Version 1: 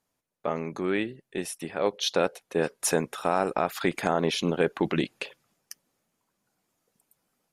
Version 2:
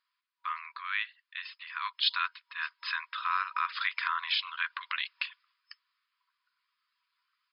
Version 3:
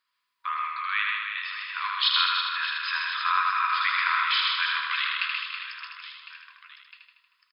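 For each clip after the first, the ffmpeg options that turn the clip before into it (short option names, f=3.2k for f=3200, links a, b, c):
-af "afftfilt=real='re*between(b*sr/4096,960,5200)':imag='im*between(b*sr/4096,960,5200)':win_size=4096:overlap=0.75,volume=2dB"
-filter_complex "[0:a]asplit=2[a][b];[b]aecho=0:1:130|325|617.5|1056|1714:0.631|0.398|0.251|0.158|0.1[c];[a][c]amix=inputs=2:normalize=0,flanger=delay=6.5:depth=4.8:regen=-80:speed=0.31:shape=triangular,asplit=2[d][e];[e]aecho=0:1:78|156|234|312|390|468|546|624|702:0.631|0.379|0.227|0.136|0.0818|0.0491|0.0294|0.0177|0.0106[f];[d][f]amix=inputs=2:normalize=0,volume=8dB"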